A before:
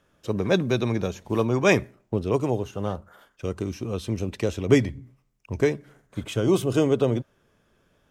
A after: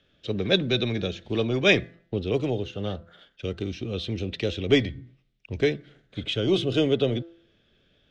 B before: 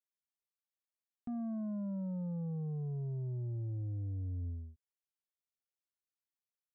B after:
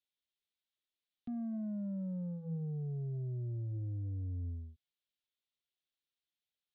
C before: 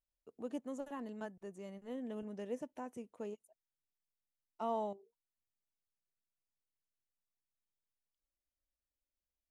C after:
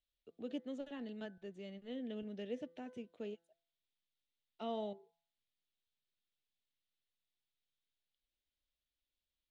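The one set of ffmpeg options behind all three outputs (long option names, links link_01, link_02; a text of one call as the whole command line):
ffmpeg -i in.wav -filter_complex "[0:a]lowpass=frequency=3600:width_type=q:width=3.3,equalizer=frequency=1000:width_type=o:width=0.63:gain=-14.5,bandreject=frequency=168.5:width_type=h:width=4,bandreject=frequency=337:width_type=h:width=4,bandreject=frequency=505.5:width_type=h:width=4,bandreject=frequency=674:width_type=h:width=4,bandreject=frequency=842.5:width_type=h:width=4,bandreject=frequency=1011:width_type=h:width=4,bandreject=frequency=1179.5:width_type=h:width=4,bandreject=frequency=1348:width_type=h:width=4,bandreject=frequency=1516.5:width_type=h:width=4,bandreject=frequency=1685:width_type=h:width=4,bandreject=frequency=1853.5:width_type=h:width=4,bandreject=frequency=2022:width_type=h:width=4,acrossover=split=270[link_01][link_02];[link_01]asoftclip=type=tanh:threshold=-25.5dB[link_03];[link_03][link_02]amix=inputs=2:normalize=0" out.wav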